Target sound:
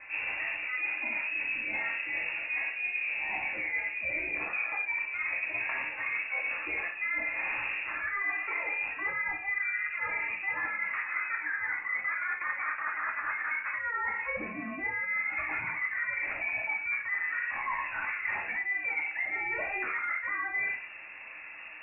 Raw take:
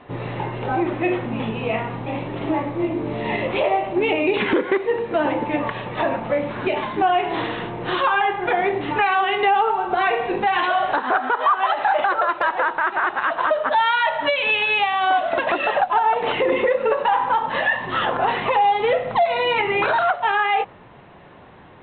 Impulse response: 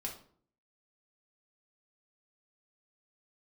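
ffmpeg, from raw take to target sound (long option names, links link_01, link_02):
-filter_complex "[1:a]atrim=start_sample=2205[link_01];[0:a][link_01]afir=irnorm=-1:irlink=0,areverse,acompressor=threshold=-30dB:ratio=10,areverse,lowpass=frequency=2400:width_type=q:width=0.5098,lowpass=frequency=2400:width_type=q:width=0.6013,lowpass=frequency=2400:width_type=q:width=0.9,lowpass=frequency=2400:width_type=q:width=2.563,afreqshift=-2800"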